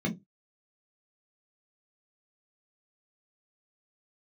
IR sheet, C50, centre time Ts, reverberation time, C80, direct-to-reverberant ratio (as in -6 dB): 16.0 dB, 16 ms, not exponential, 25.5 dB, 0.0 dB